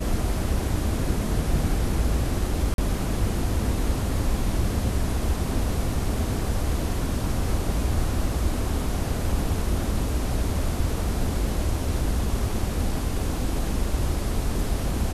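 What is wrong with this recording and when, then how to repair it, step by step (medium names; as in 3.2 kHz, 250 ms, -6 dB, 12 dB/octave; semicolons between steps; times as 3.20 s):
2.74–2.78 s: dropout 42 ms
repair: interpolate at 2.74 s, 42 ms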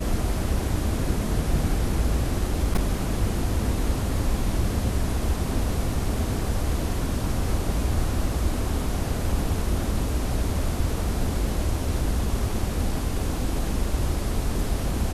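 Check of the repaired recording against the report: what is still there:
nothing left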